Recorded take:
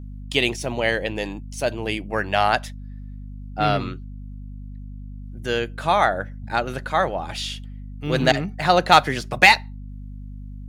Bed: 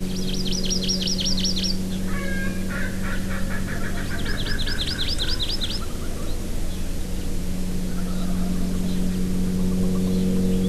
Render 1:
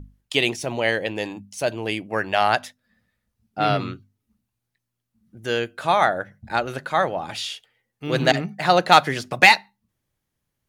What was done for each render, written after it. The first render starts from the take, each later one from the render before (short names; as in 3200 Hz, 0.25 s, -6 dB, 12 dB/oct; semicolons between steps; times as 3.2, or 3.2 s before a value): notches 50/100/150/200/250 Hz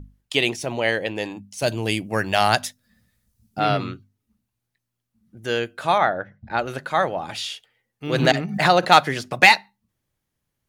1.62–3.6 tone controls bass +8 dB, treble +12 dB; 5.98–6.59 air absorption 180 m; 8.14–8.9 backwards sustainer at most 86 dB/s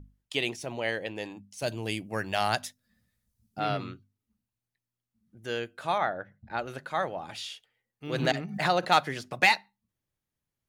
gain -9 dB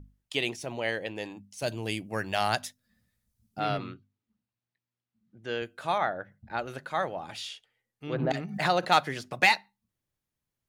3.78–5.62 BPF 100–4200 Hz; 7.48–8.31 treble ducked by the level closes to 820 Hz, closed at -24.5 dBFS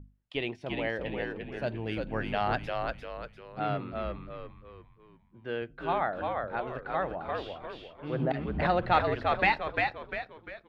air absorption 390 m; frequency-shifting echo 0.348 s, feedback 41%, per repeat -78 Hz, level -3.5 dB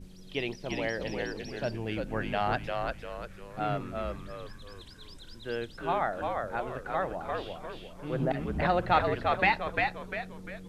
add bed -25 dB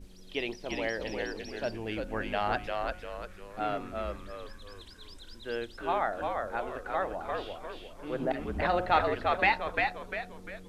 bell 140 Hz -13.5 dB 0.61 oct; de-hum 181.3 Hz, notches 8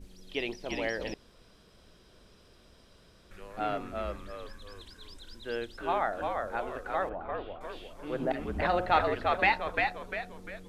1.14–3.31 room tone; 7.09–7.61 air absorption 440 m